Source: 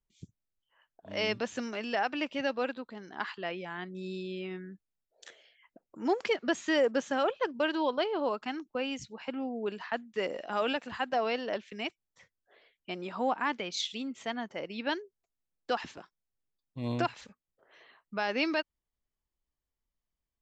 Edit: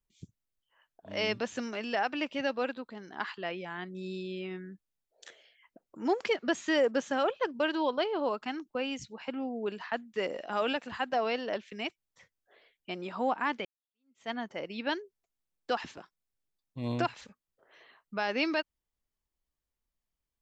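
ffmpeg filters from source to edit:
ffmpeg -i in.wav -filter_complex "[0:a]asplit=2[link_01][link_02];[link_01]atrim=end=13.65,asetpts=PTS-STARTPTS,afade=type=out:start_time=13.646:duration=0.004:curve=hsin[link_03];[link_02]atrim=start=13.65,asetpts=PTS-STARTPTS,afade=type=in:duration=0.65:curve=exp[link_04];[link_03][link_04]concat=n=2:v=0:a=1" out.wav

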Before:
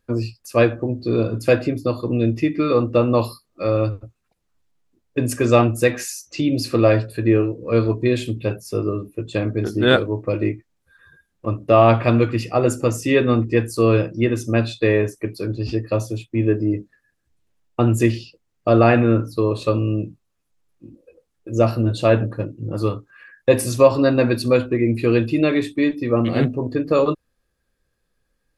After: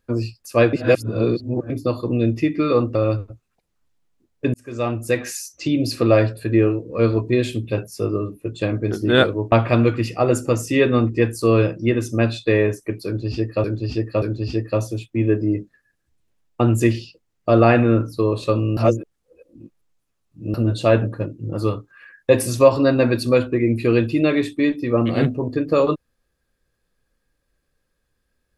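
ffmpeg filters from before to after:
ffmpeg -i in.wav -filter_complex "[0:a]asplit=10[link_01][link_02][link_03][link_04][link_05][link_06][link_07][link_08][link_09][link_10];[link_01]atrim=end=0.732[link_11];[link_02]atrim=start=0.728:end=1.702,asetpts=PTS-STARTPTS,areverse[link_12];[link_03]atrim=start=1.698:end=2.952[link_13];[link_04]atrim=start=3.678:end=5.27,asetpts=PTS-STARTPTS,afade=type=out:start_time=1.588:duration=0.004:curve=hsin[link_14];[link_05]atrim=start=5.27:end=10.252,asetpts=PTS-STARTPTS,afade=type=in:duration=0.86[link_15];[link_06]atrim=start=11.868:end=15.992[link_16];[link_07]atrim=start=15.408:end=15.992[link_17];[link_08]atrim=start=15.408:end=19.962[link_18];[link_09]atrim=start=19.958:end=21.732,asetpts=PTS-STARTPTS,areverse[link_19];[link_10]atrim=start=21.728[link_20];[link_11][link_12]acrossfade=duration=0.004:curve1=hsin:curve2=hsin[link_21];[link_21][link_13]acrossfade=duration=0.004:curve1=hsin:curve2=hsin[link_22];[link_14][link_15]concat=n=2:v=0:a=1[link_23];[link_22][link_23]acrossfade=duration=0.004:curve1=hsin:curve2=hsin[link_24];[link_24][link_16]acrossfade=duration=0.004:curve1=hsin:curve2=hsin[link_25];[link_25][link_17]acrossfade=duration=0.004:curve1=hsin:curve2=hsin[link_26];[link_26][link_18]acrossfade=duration=0.004:curve1=hsin:curve2=hsin[link_27];[link_27][link_19]acrossfade=duration=0.004:curve1=hsin:curve2=hsin[link_28];[link_28][link_20]acrossfade=duration=0.004:curve1=hsin:curve2=hsin" out.wav

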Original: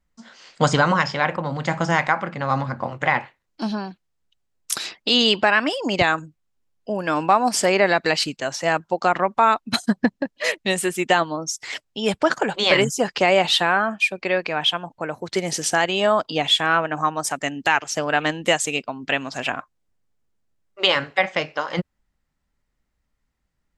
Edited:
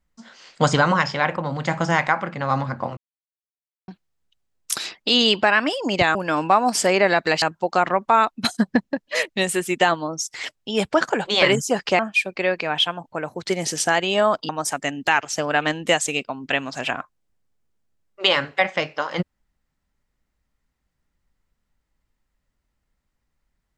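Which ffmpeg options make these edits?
ffmpeg -i in.wav -filter_complex "[0:a]asplit=7[link_01][link_02][link_03][link_04][link_05][link_06][link_07];[link_01]atrim=end=2.97,asetpts=PTS-STARTPTS,afade=type=out:start_time=2.966:duration=0.004:curve=hsin[link_08];[link_02]atrim=start=2.97:end=3.88,asetpts=PTS-STARTPTS,volume=0[link_09];[link_03]atrim=start=3.88:end=6.152,asetpts=PTS-STARTPTS,afade=type=in:duration=0.004:curve=hsin[link_10];[link_04]atrim=start=6.938:end=8.212[link_11];[link_05]atrim=start=8.708:end=13.282[link_12];[link_06]atrim=start=13.848:end=16.352[link_13];[link_07]atrim=start=17.078[link_14];[link_08][link_09][link_10]concat=n=3:v=0:a=1[link_15];[link_15][link_11]acrossfade=duration=0.004:curve1=hsin:curve2=hsin[link_16];[link_16][link_12]acrossfade=duration=0.004:curve1=hsin:curve2=hsin[link_17];[link_17][link_13]acrossfade=duration=0.004:curve1=hsin:curve2=hsin[link_18];[link_18][link_14]acrossfade=duration=0.004:curve1=hsin:curve2=hsin" out.wav

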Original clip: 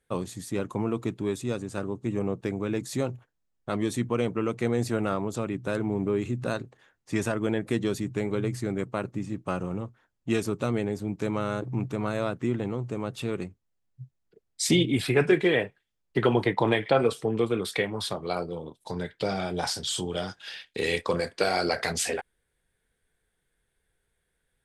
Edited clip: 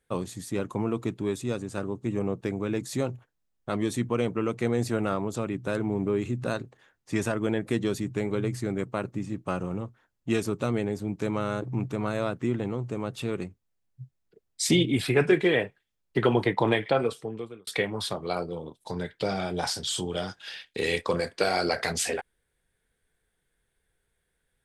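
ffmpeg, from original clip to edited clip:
ffmpeg -i in.wav -filter_complex "[0:a]asplit=2[link_01][link_02];[link_01]atrim=end=17.67,asetpts=PTS-STARTPTS,afade=type=out:start_time=16.75:duration=0.92[link_03];[link_02]atrim=start=17.67,asetpts=PTS-STARTPTS,afade=type=in:duration=0.004:curve=hsin[link_04];[link_03][link_04]concat=n=2:v=0:a=1" out.wav

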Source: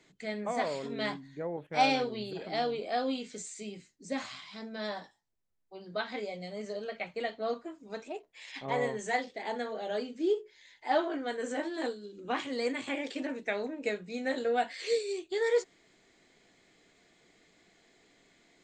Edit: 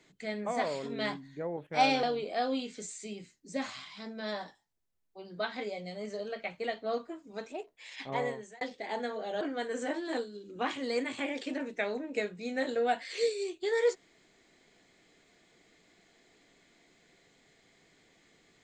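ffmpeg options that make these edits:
ffmpeg -i in.wav -filter_complex "[0:a]asplit=4[link_01][link_02][link_03][link_04];[link_01]atrim=end=2.032[link_05];[link_02]atrim=start=2.588:end=9.17,asetpts=PTS-STARTPTS,afade=type=out:start_time=6.092:duration=0.49[link_06];[link_03]atrim=start=9.17:end=9.972,asetpts=PTS-STARTPTS,afade=type=in:duration=0.004:curve=hsin[link_07];[link_04]atrim=start=11.098[link_08];[link_06][link_07]concat=n=2:v=0:a=1[link_09];[link_05][link_09]acrossfade=duration=0.004:curve1=hsin:curve2=hsin[link_10];[link_10][link_08]acrossfade=duration=0.004:curve1=hsin:curve2=hsin" out.wav

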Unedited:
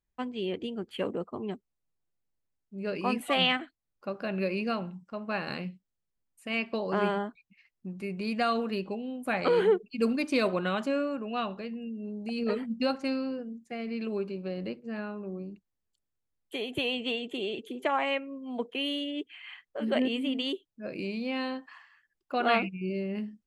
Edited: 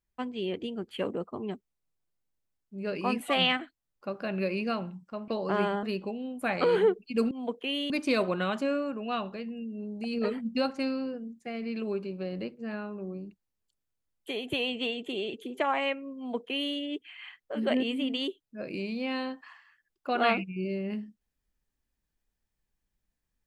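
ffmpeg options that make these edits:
ffmpeg -i in.wav -filter_complex "[0:a]asplit=5[link_01][link_02][link_03][link_04][link_05];[link_01]atrim=end=5.282[link_06];[link_02]atrim=start=6.708:end=7.262[link_07];[link_03]atrim=start=8.668:end=10.152[link_08];[link_04]atrim=start=18.418:end=19.012[link_09];[link_05]atrim=start=10.148[link_10];[link_06][link_07]acrossfade=duration=0.004:curve1=hsin:curve2=hsin[link_11];[link_11][link_08]acrossfade=duration=0.004:curve1=hsin:curve2=hsin[link_12];[link_12][link_09]acrossfade=duration=0.004:curve1=hsin:curve2=hsin[link_13];[link_13][link_10]acrossfade=duration=0.004:curve1=hsin:curve2=hsin" out.wav

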